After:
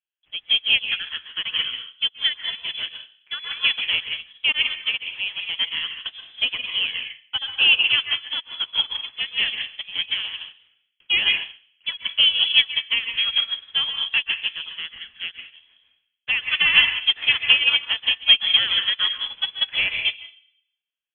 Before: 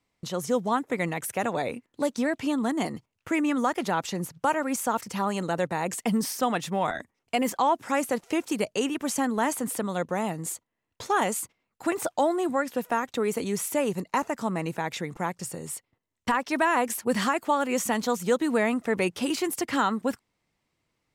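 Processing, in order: median filter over 15 samples; high-pass 380 Hz 24 dB/octave; peaking EQ 1.1 kHz +4 dB 0.24 oct; in parallel at +1 dB: peak limiter -21 dBFS, peak gain reduction 9.5 dB; on the sum: plate-style reverb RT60 0.84 s, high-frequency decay 0.7×, pre-delay 115 ms, DRR 0.5 dB; frequency inversion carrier 3.7 kHz; upward expansion 2.5:1, over -33 dBFS; trim +6 dB

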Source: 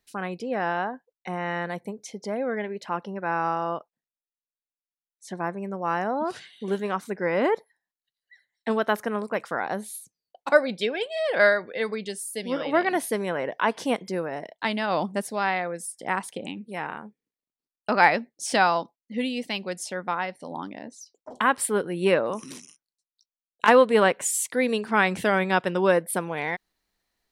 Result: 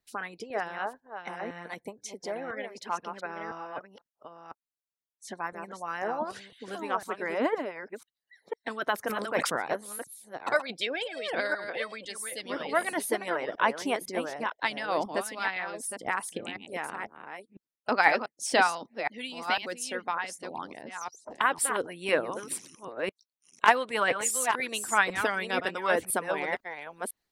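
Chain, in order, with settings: chunks repeated in reverse 502 ms, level -7 dB; harmonic-percussive split harmonic -16 dB; 9.02–9.53 s: decay stretcher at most 52 dB/s

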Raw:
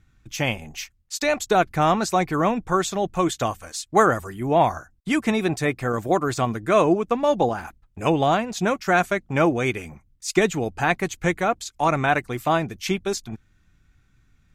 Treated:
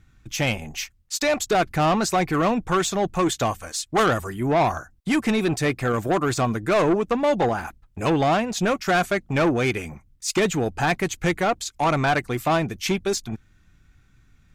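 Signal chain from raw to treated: saturation -18.5 dBFS, distortion -10 dB; trim +3.5 dB

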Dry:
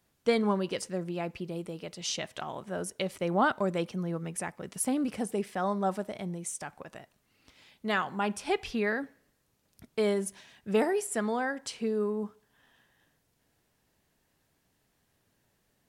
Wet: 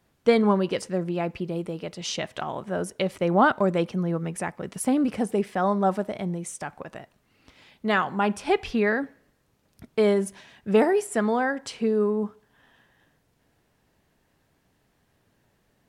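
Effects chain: treble shelf 3.7 kHz -8.5 dB; trim +7 dB

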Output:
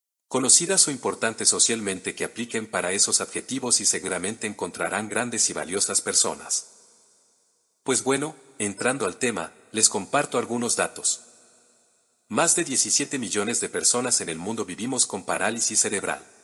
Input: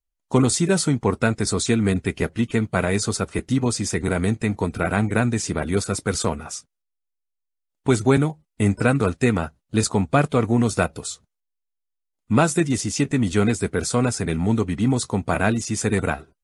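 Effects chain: high-pass 140 Hz 12 dB/octave; tone controls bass -13 dB, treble +12 dB; two-slope reverb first 0.48 s, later 3.3 s, from -15 dB, DRR 18 dB; trim -2.5 dB

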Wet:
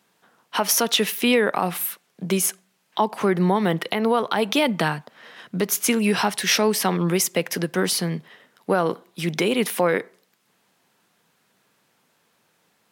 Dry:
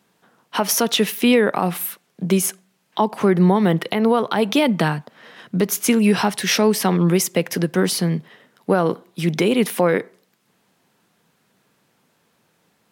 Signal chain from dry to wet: bass shelf 430 Hz -7 dB

